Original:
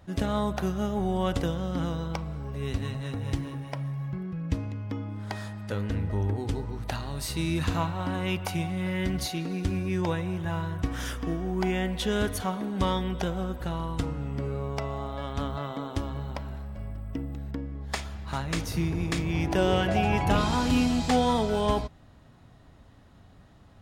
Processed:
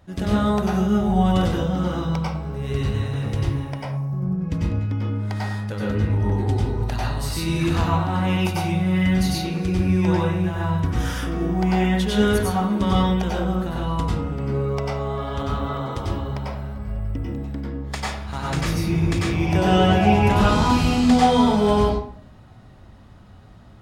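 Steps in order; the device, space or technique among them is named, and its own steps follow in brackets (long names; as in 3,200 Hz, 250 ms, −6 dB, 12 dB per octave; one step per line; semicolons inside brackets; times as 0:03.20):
0:03.82–0:04.41: flat-topped bell 2,500 Hz −13.5 dB
bathroom (convolution reverb RT60 0.55 s, pre-delay 90 ms, DRR −5.5 dB)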